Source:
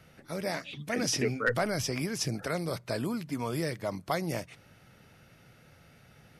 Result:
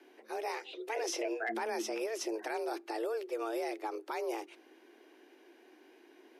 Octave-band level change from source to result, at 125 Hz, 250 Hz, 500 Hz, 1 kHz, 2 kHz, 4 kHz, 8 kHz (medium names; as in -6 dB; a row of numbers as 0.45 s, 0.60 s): under -40 dB, -7.5 dB, -2.0 dB, -1.0 dB, -6.5 dB, -8.5 dB, -7.5 dB